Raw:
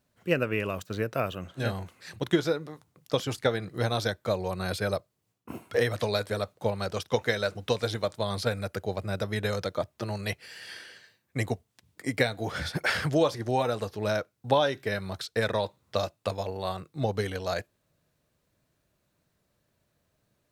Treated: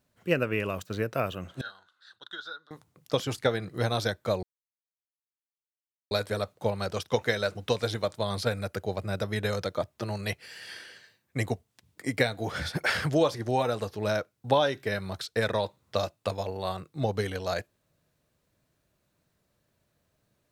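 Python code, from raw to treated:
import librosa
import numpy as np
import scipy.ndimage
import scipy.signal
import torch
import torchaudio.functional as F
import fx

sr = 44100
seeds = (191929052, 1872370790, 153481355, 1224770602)

y = fx.double_bandpass(x, sr, hz=2300.0, octaves=1.3, at=(1.61, 2.71))
y = fx.edit(y, sr, fx.silence(start_s=4.43, length_s=1.68), tone=tone)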